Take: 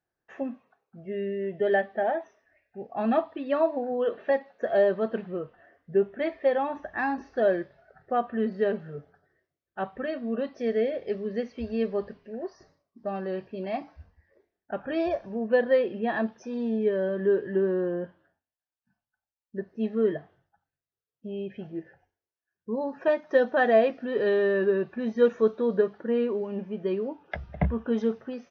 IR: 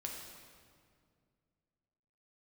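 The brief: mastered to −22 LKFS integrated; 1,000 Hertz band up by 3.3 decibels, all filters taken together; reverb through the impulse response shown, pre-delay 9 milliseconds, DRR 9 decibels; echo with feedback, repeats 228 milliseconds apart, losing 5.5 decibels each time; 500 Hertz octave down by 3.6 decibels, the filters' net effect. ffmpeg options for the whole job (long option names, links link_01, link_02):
-filter_complex "[0:a]equalizer=frequency=500:width_type=o:gain=-7,equalizer=frequency=1000:width_type=o:gain=8.5,aecho=1:1:228|456|684|912|1140|1368|1596:0.531|0.281|0.149|0.079|0.0419|0.0222|0.0118,asplit=2[link_01][link_02];[1:a]atrim=start_sample=2205,adelay=9[link_03];[link_02][link_03]afir=irnorm=-1:irlink=0,volume=-8dB[link_04];[link_01][link_04]amix=inputs=2:normalize=0,volume=6.5dB"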